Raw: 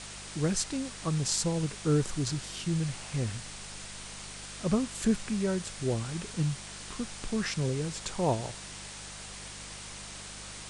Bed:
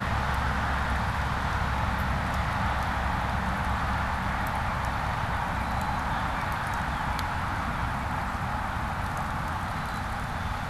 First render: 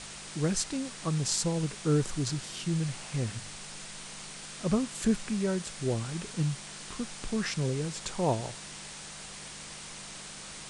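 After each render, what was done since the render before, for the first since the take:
hum removal 50 Hz, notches 2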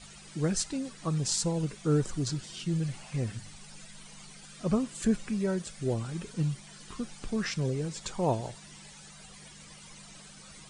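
broadband denoise 13 dB, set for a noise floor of −44 dBFS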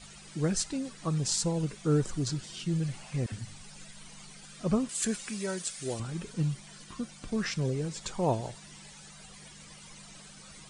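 0:03.26–0:04.09: all-pass dispersion lows, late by 63 ms, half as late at 360 Hz
0:04.89–0:06.00: spectral tilt +3 dB per octave
0:06.84–0:07.32: notch comb filter 420 Hz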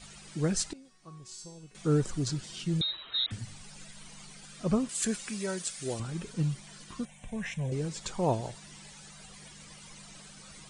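0:00.73–0:01.75: tuned comb filter 370 Hz, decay 0.71 s, mix 90%
0:02.81–0:03.31: voice inversion scrambler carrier 3,900 Hz
0:07.05–0:07.72: phaser with its sweep stopped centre 1,300 Hz, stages 6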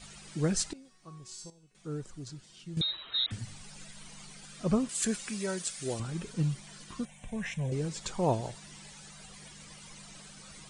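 0:01.50–0:02.77: clip gain −12 dB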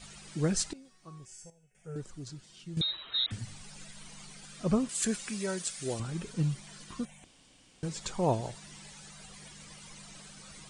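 0:01.25–0:01.96: phaser with its sweep stopped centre 1,100 Hz, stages 6
0:07.24–0:07.83: fill with room tone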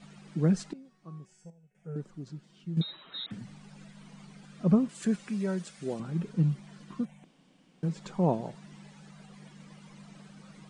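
low-pass filter 1,400 Hz 6 dB per octave
low shelf with overshoot 120 Hz −12 dB, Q 3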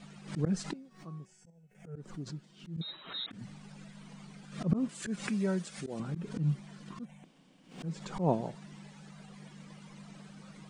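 volume swells 121 ms
background raised ahead of every attack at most 120 dB per second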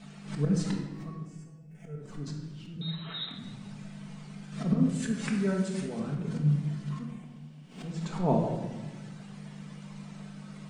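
rectangular room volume 850 cubic metres, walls mixed, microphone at 1.5 metres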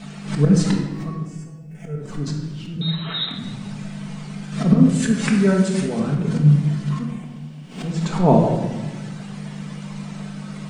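level +12 dB
brickwall limiter −2 dBFS, peak gain reduction 1 dB

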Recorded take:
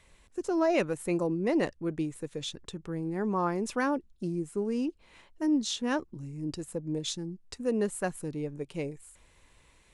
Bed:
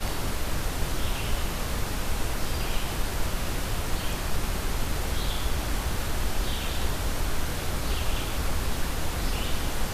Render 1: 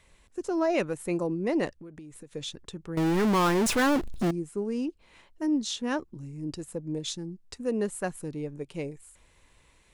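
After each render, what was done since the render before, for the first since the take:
0:01.78–0:02.35: downward compressor 16 to 1, threshold −41 dBFS
0:02.97–0:04.31: power curve on the samples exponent 0.35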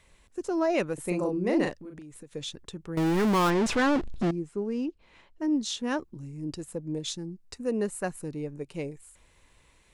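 0:00.94–0:02.02: double-tracking delay 39 ms −3 dB
0:03.50–0:05.51: high-frequency loss of the air 76 metres
0:07.16–0:08.74: notch filter 3,300 Hz, Q 8.8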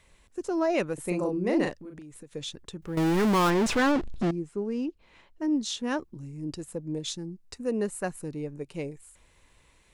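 0:02.82–0:03.92: mu-law and A-law mismatch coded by mu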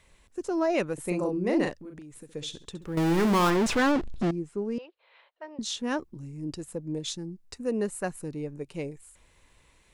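0:02.10–0:03.57: flutter between parallel walls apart 11.5 metres, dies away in 0.31 s
0:04.78–0:05.59: elliptic band-pass filter 510–4,000 Hz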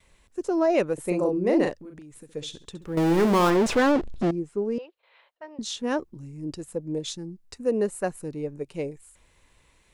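noise gate with hold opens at −56 dBFS
dynamic equaliser 500 Hz, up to +6 dB, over −39 dBFS, Q 1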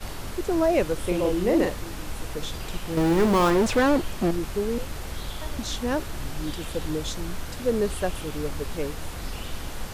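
mix in bed −5.5 dB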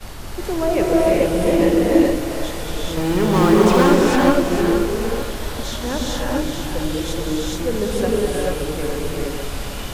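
echo with a time of its own for lows and highs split 550 Hz, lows 136 ms, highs 454 ms, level −7.5 dB
reverb whose tail is shaped and stops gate 460 ms rising, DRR −4 dB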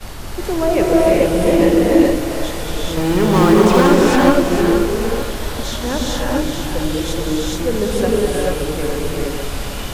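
level +3 dB
brickwall limiter −1 dBFS, peak gain reduction 2.5 dB

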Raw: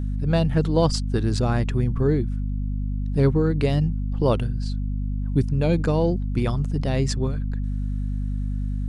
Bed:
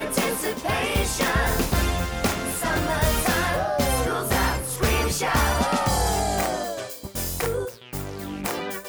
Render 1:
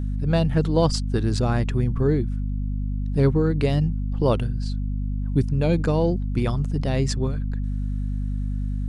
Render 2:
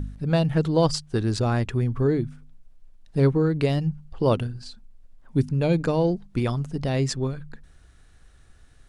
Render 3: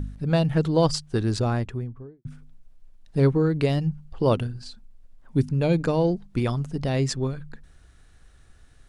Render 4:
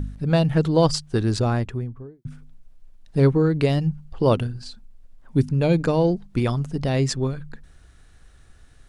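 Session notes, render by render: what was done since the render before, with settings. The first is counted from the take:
no processing that can be heard
hum removal 50 Hz, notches 5
0:01.30–0:02.25: fade out and dull
level +2.5 dB

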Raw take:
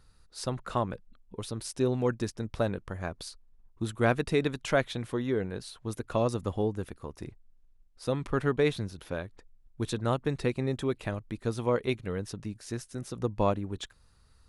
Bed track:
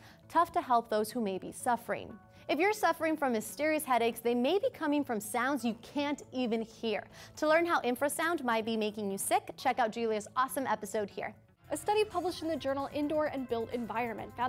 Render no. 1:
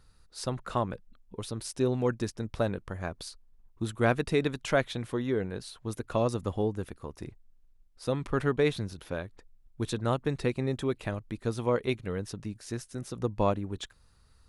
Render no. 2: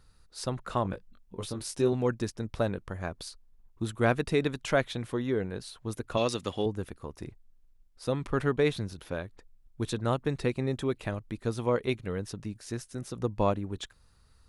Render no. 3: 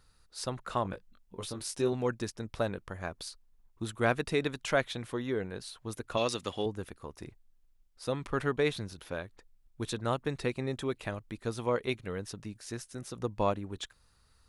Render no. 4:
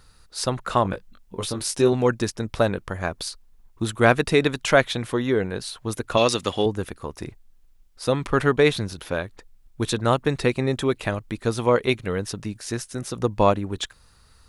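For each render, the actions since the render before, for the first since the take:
0:08.40–0:08.94: upward compression, threshold −33 dBFS
0:00.83–0:01.93: double-tracking delay 21 ms −5 dB; 0:06.17–0:06.66: meter weighting curve D
low-shelf EQ 490 Hz −5.5 dB
level +11 dB

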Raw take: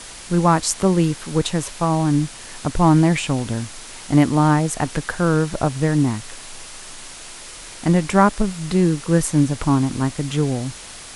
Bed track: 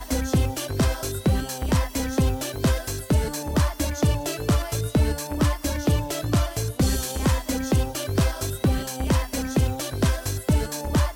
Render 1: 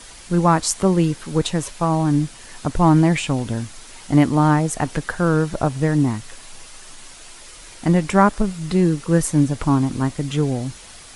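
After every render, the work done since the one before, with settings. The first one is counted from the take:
broadband denoise 6 dB, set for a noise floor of −38 dBFS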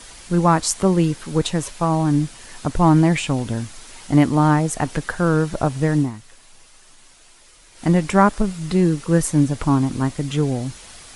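0:05.98–0:07.86: duck −9 dB, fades 0.13 s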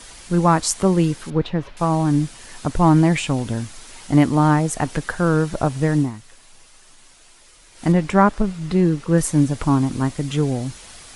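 0:01.30–0:01.77: high-frequency loss of the air 330 metres
0:07.92–0:09.18: low-pass filter 3,600 Hz 6 dB per octave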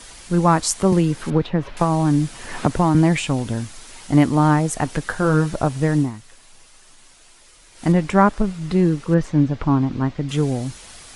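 0:00.92–0:02.95: multiband upward and downward compressor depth 100%
0:05.04–0:05.56: double-tracking delay 20 ms −8 dB
0:09.14–0:10.29: high-frequency loss of the air 200 metres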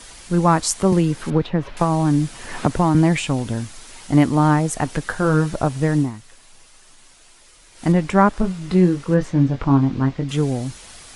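0:08.33–0:10.24: double-tracking delay 22 ms −7 dB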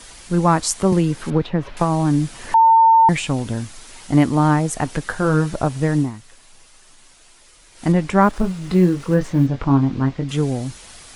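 0:02.54–0:03.09: beep over 903 Hz −8 dBFS
0:08.22–0:09.47: mu-law and A-law mismatch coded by mu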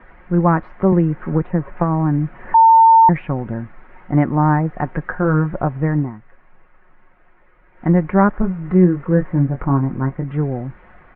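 Butterworth low-pass 2,000 Hz 36 dB per octave
comb filter 5.5 ms, depth 34%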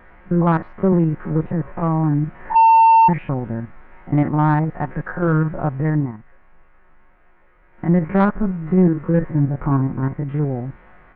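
spectrum averaged block by block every 50 ms
soft clipping −5.5 dBFS, distortion −20 dB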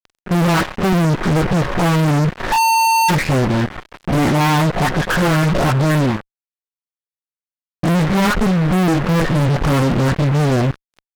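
all-pass dispersion highs, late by 63 ms, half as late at 1,300 Hz
fuzz pedal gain 36 dB, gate −37 dBFS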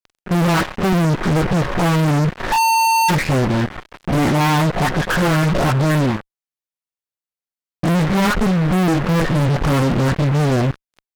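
level −1 dB

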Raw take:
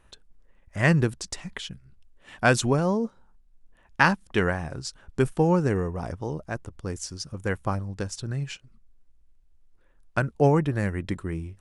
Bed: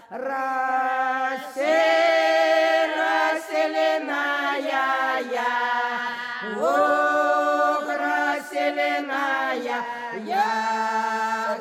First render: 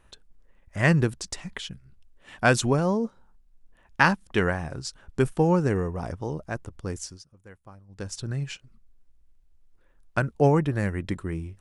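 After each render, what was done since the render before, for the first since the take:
0:06.99–0:08.14: duck −20.5 dB, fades 0.26 s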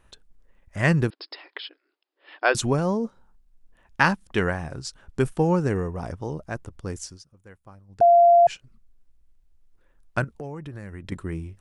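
0:01.10–0:02.55: linear-phase brick-wall band-pass 280–5,300 Hz
0:08.01–0:08.47: beep over 690 Hz −11 dBFS
0:10.24–0:11.12: downward compressor 5 to 1, threshold −34 dBFS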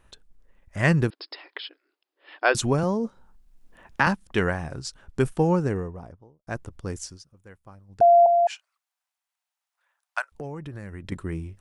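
0:02.83–0:04.07: multiband upward and downward compressor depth 40%
0:05.41–0:06.47: fade out and dull
0:08.26–0:10.32: Butterworth high-pass 730 Hz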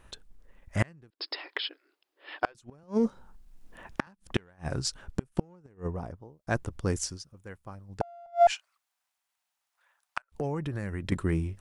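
in parallel at −5.5 dB: asymmetric clip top −25.5 dBFS
on the sum: gate with flip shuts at −12 dBFS, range −36 dB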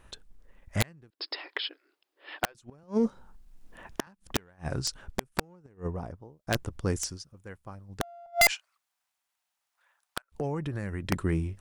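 wrap-around overflow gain 15 dB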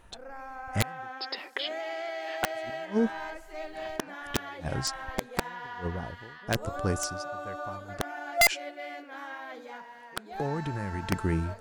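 mix in bed −17 dB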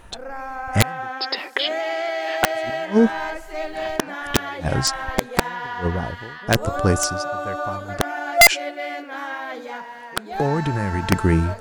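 level +10.5 dB

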